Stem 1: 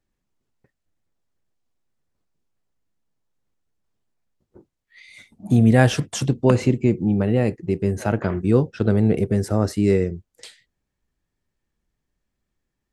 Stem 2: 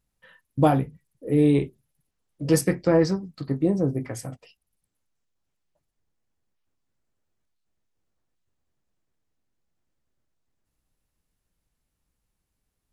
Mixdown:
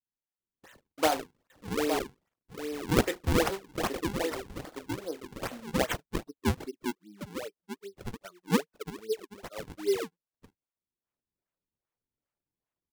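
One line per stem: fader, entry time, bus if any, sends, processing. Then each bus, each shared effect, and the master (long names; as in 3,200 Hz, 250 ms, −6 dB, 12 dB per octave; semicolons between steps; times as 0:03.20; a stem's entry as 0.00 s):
−8.5 dB, 0.00 s, no send, no echo send, spectral dynamics exaggerated over time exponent 3; parametric band 440 Hz +11 dB 0.4 octaves
−4.0 dB, 0.40 s, no send, echo send −6.5 dB, speech leveller within 5 dB 0.5 s; noise gate with hold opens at −50 dBFS; automatic ducking −19 dB, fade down 1.90 s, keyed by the first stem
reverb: not used
echo: single-tap delay 864 ms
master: high-pass filter 360 Hz 24 dB per octave; high-shelf EQ 2,700 Hz +12 dB; sample-and-hold swept by an LFO 41×, swing 160% 2.5 Hz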